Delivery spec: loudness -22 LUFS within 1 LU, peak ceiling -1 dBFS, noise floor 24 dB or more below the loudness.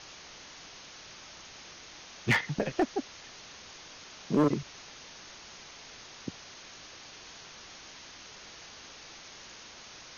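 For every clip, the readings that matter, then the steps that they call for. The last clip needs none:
clipped 0.2%; flat tops at -18.5 dBFS; noise floor -50 dBFS; noise floor target -61 dBFS; loudness -37.0 LUFS; peak -18.5 dBFS; loudness target -22.0 LUFS
-> clip repair -18.5 dBFS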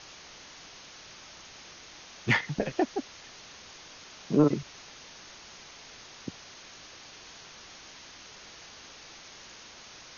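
clipped 0.0%; noise floor -50 dBFS; noise floor target -54 dBFS
-> denoiser 6 dB, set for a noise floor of -50 dBFS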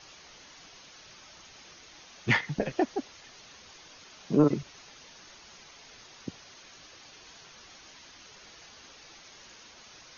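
noise floor -53 dBFS; loudness -29.0 LUFS; peak -11.0 dBFS; loudness target -22.0 LUFS
-> gain +7 dB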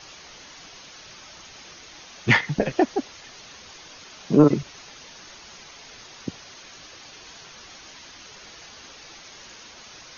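loudness -22.0 LUFS; peak -4.0 dBFS; noise floor -46 dBFS

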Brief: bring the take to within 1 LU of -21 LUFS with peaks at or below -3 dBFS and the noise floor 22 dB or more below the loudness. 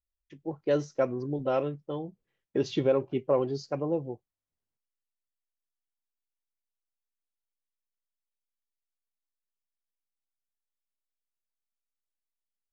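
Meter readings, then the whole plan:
loudness -30.0 LUFS; peak -13.0 dBFS; loudness target -21.0 LUFS
-> gain +9 dB

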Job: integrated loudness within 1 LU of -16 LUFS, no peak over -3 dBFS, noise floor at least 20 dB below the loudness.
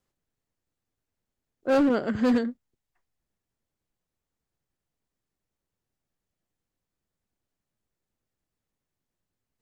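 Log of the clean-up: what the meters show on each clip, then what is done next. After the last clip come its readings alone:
clipped 0.7%; flat tops at -17.5 dBFS; loudness -24.5 LUFS; peak -17.5 dBFS; loudness target -16.0 LUFS
-> clip repair -17.5 dBFS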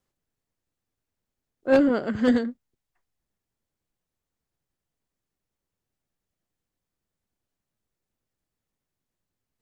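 clipped 0.0%; loudness -22.5 LUFS; peak -8.5 dBFS; loudness target -16.0 LUFS
-> gain +6.5 dB; limiter -3 dBFS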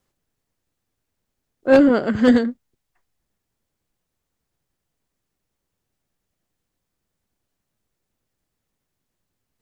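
loudness -16.0 LUFS; peak -3.0 dBFS; noise floor -80 dBFS

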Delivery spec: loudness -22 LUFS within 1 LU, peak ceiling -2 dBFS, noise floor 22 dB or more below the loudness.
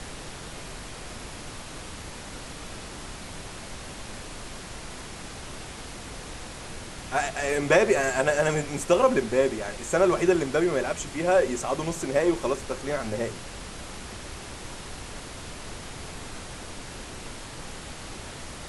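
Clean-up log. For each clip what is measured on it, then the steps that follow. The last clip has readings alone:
noise floor -40 dBFS; noise floor target -51 dBFS; loudness -28.5 LUFS; peak -7.0 dBFS; loudness target -22.0 LUFS
-> noise print and reduce 11 dB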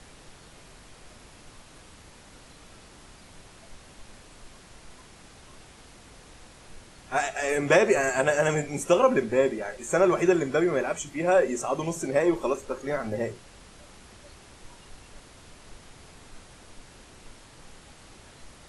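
noise floor -51 dBFS; loudness -25.0 LUFS; peak -7.0 dBFS; loudness target -22.0 LUFS
-> gain +3 dB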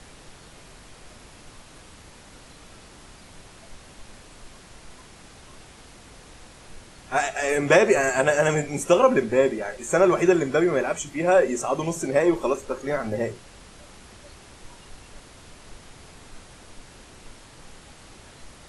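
loudness -22.0 LUFS; peak -4.0 dBFS; noise floor -48 dBFS

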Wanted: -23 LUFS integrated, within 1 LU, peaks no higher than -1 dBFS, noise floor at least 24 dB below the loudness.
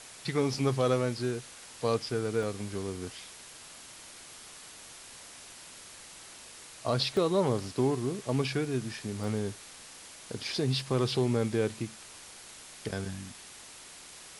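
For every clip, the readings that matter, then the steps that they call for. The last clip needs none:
dropouts 4; longest dropout 1.4 ms; noise floor -49 dBFS; noise floor target -56 dBFS; loudness -31.5 LUFS; peak -15.0 dBFS; loudness target -23.0 LUFS
-> interpolate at 0.54/2.43/7.17/9.24, 1.4 ms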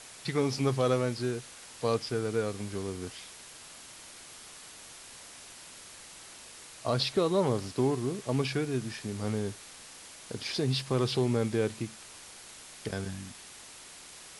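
dropouts 0; noise floor -49 dBFS; noise floor target -56 dBFS
-> denoiser 7 dB, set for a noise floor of -49 dBFS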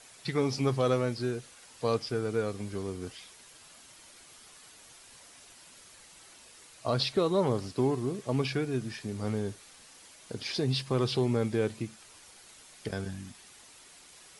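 noise floor -55 dBFS; noise floor target -56 dBFS
-> denoiser 6 dB, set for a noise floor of -55 dBFS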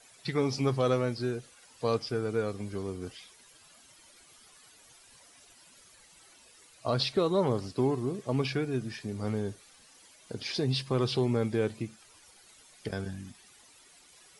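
noise floor -58 dBFS; loudness -31.5 LUFS; peak -15.0 dBFS; loudness target -23.0 LUFS
-> gain +8.5 dB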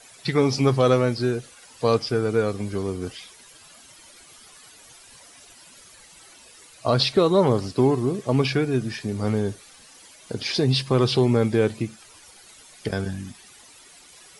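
loudness -23.0 LUFS; peak -6.5 dBFS; noise floor -50 dBFS

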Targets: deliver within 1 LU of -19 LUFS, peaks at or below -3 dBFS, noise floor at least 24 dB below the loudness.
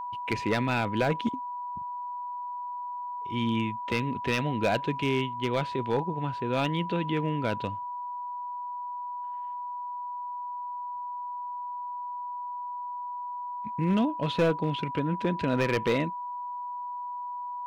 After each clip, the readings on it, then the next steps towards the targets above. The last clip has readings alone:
clipped 0.4%; flat tops at -18.5 dBFS; steady tone 980 Hz; tone level -33 dBFS; loudness -31.0 LUFS; peak -18.5 dBFS; loudness target -19.0 LUFS
-> clip repair -18.5 dBFS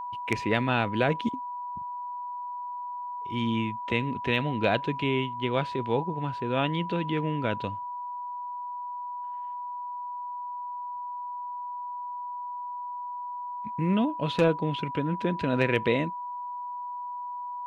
clipped 0.0%; steady tone 980 Hz; tone level -33 dBFS
-> notch 980 Hz, Q 30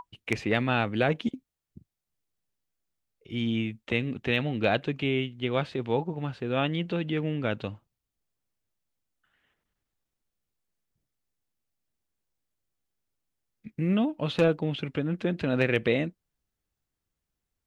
steady tone none; loudness -28.5 LUFS; peak -9.0 dBFS; loudness target -19.0 LUFS
-> gain +9.5 dB; limiter -3 dBFS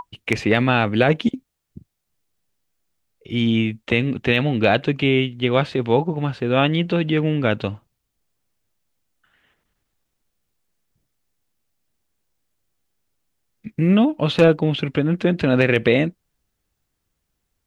loudness -19.5 LUFS; peak -3.0 dBFS; noise floor -77 dBFS

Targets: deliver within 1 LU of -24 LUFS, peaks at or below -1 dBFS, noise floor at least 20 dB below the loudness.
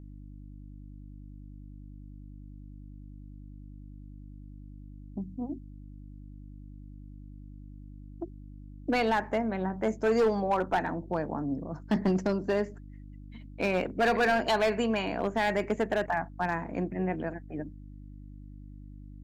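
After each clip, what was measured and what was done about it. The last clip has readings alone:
clipped 0.9%; flat tops at -20.0 dBFS; hum 50 Hz; harmonics up to 300 Hz; hum level -44 dBFS; loudness -29.5 LUFS; peak -20.0 dBFS; loudness target -24.0 LUFS
-> clip repair -20 dBFS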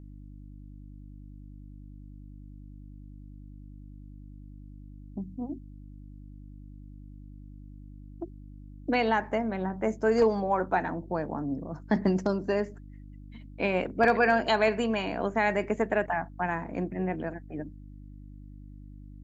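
clipped 0.0%; hum 50 Hz; harmonics up to 300 Hz; hum level -44 dBFS
-> de-hum 50 Hz, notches 6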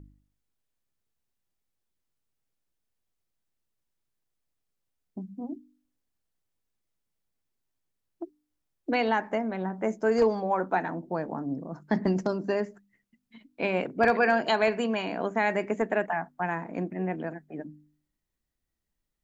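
hum none; loudness -28.5 LUFS; peak -10.5 dBFS; loudness target -24.0 LUFS
-> gain +4.5 dB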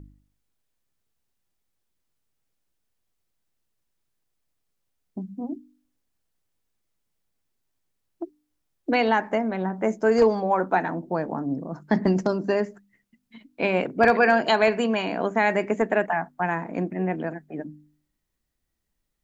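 loudness -24.0 LUFS; peak -6.0 dBFS; noise floor -78 dBFS

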